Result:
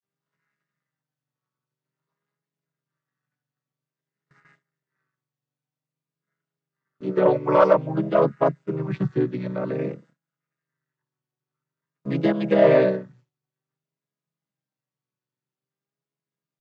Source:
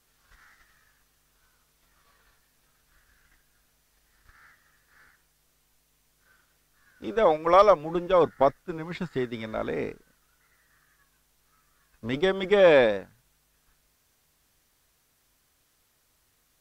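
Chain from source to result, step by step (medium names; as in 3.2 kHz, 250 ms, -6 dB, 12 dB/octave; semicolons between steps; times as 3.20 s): vocoder on a held chord minor triad, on C3; gate with hold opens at -50 dBFS; in parallel at -4.5 dB: saturation -16 dBFS, distortion -12 dB; on the sum: vibrato 0.51 Hz 90 cents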